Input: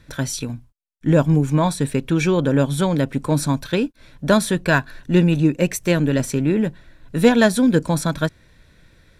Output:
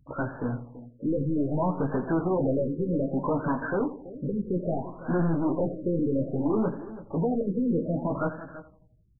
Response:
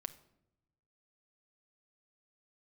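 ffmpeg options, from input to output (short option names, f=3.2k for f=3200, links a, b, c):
-filter_complex "[0:a]afftfilt=real='re*gte(hypot(re,im),0.0141)':imag='im*gte(hypot(re,im),0.0141)':win_size=1024:overlap=0.75,atempo=1,asplit=2[a][b];[b]highpass=f=720:p=1,volume=29dB,asoftclip=type=tanh:threshold=-1dB[c];[a][c]amix=inputs=2:normalize=0,lowpass=f=1.4k:p=1,volume=-6dB,flanger=delay=15:depth=2.8:speed=1.6,asoftclip=type=tanh:threshold=-14dB,asplit=2[d][e];[e]adelay=332.4,volume=-15dB,highshelf=f=4k:g=-7.48[f];[d][f]amix=inputs=2:normalize=0,asplit=2[g][h];[h]asetrate=88200,aresample=44100,atempo=0.5,volume=-14dB[i];[g][i]amix=inputs=2:normalize=0,asplit=2[j][k];[k]aecho=0:1:84|168|252|336|420:0.224|0.107|0.0516|0.0248|0.0119[l];[j][l]amix=inputs=2:normalize=0,afftfilt=real='re*lt(b*sr/1024,520*pow(1800/520,0.5+0.5*sin(2*PI*0.62*pts/sr)))':imag='im*lt(b*sr/1024,520*pow(1800/520,0.5+0.5*sin(2*PI*0.62*pts/sr)))':win_size=1024:overlap=0.75,volume=-8dB"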